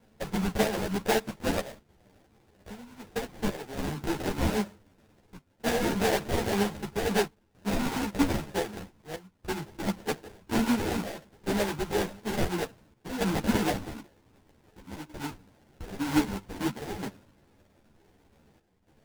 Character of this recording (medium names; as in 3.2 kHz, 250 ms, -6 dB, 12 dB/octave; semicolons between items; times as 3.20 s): chopped level 0.53 Hz, depth 65%, duty 85%; phasing stages 12, 2 Hz, lowest notch 490–1400 Hz; aliases and images of a low sample rate 1.2 kHz, jitter 20%; a shimmering, thickened sound